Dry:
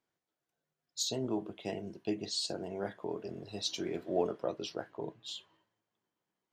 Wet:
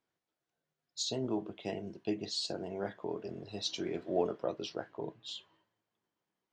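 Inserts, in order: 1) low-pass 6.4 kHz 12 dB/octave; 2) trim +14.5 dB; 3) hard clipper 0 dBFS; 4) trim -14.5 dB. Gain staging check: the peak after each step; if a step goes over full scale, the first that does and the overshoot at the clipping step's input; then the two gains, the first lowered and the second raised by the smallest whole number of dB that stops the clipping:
-18.0 dBFS, -3.5 dBFS, -3.5 dBFS, -18.0 dBFS; nothing clips

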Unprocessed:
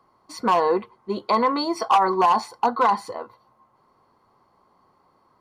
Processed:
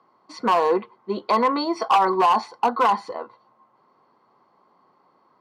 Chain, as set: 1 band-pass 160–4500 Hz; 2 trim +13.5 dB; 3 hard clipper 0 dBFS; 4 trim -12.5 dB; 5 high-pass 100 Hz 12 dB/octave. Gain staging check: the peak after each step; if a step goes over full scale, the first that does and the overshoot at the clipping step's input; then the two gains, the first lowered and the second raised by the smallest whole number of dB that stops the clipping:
-9.0 dBFS, +4.5 dBFS, 0.0 dBFS, -12.5 dBFS, -10.5 dBFS; step 2, 4.5 dB; step 2 +8.5 dB, step 4 -7.5 dB

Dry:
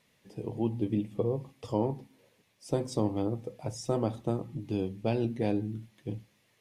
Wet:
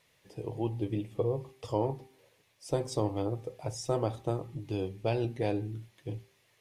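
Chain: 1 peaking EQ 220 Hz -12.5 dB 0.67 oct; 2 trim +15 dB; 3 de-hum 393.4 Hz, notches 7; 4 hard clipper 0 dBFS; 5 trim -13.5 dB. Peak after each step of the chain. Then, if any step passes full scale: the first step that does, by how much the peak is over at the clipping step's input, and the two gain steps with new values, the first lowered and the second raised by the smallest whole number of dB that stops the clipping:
-17.0 dBFS, -2.0 dBFS, -2.5 dBFS, -2.5 dBFS, -16.0 dBFS; nothing clips

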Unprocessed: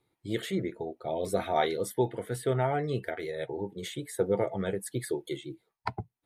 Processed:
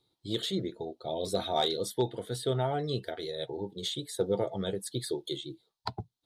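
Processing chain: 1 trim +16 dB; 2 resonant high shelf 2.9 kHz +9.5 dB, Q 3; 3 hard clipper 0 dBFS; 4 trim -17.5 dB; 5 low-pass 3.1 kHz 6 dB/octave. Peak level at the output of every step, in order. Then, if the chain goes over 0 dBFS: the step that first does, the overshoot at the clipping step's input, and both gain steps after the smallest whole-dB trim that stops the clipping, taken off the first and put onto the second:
+3.0 dBFS, +6.0 dBFS, 0.0 dBFS, -17.5 dBFS, -17.5 dBFS; step 1, 6.0 dB; step 1 +10 dB, step 4 -11.5 dB

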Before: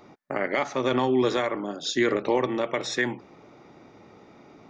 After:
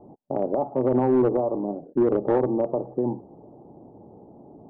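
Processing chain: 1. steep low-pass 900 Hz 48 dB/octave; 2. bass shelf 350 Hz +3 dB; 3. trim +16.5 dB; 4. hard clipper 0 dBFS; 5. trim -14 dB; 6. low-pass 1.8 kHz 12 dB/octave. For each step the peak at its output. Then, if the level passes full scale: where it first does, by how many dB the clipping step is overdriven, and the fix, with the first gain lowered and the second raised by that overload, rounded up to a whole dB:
-12.5 dBFS, -11.5 dBFS, +5.0 dBFS, 0.0 dBFS, -14.0 dBFS, -13.5 dBFS; step 3, 5.0 dB; step 3 +11.5 dB, step 5 -9 dB

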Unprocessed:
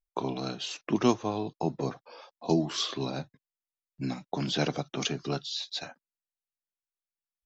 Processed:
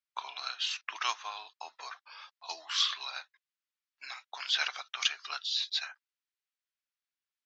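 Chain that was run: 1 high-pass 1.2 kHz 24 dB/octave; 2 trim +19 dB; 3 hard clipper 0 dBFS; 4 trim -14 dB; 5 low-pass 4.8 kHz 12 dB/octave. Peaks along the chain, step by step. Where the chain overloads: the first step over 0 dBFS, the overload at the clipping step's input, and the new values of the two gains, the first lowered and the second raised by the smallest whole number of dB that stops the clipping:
-15.0 dBFS, +4.0 dBFS, 0.0 dBFS, -14.0 dBFS, -14.0 dBFS; step 2, 4.0 dB; step 2 +15 dB, step 4 -10 dB

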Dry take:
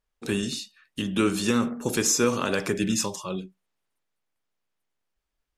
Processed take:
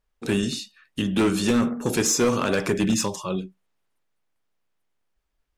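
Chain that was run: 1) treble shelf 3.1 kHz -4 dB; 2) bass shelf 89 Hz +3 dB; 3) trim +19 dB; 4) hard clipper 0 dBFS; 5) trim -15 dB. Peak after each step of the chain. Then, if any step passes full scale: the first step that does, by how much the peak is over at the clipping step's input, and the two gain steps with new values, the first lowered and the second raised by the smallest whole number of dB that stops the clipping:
-10.0 dBFS, -10.0 dBFS, +9.0 dBFS, 0.0 dBFS, -15.0 dBFS; step 3, 9.0 dB; step 3 +10 dB, step 5 -6 dB

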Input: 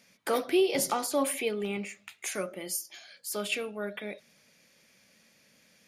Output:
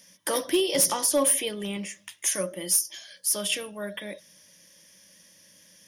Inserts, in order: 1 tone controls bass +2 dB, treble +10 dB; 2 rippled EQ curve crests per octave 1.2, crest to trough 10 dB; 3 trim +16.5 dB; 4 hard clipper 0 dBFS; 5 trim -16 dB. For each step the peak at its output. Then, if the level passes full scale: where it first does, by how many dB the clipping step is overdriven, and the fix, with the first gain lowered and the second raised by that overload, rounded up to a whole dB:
-7.5 dBFS, -6.5 dBFS, +10.0 dBFS, 0.0 dBFS, -16.0 dBFS; step 3, 10.0 dB; step 3 +6.5 dB, step 5 -6 dB

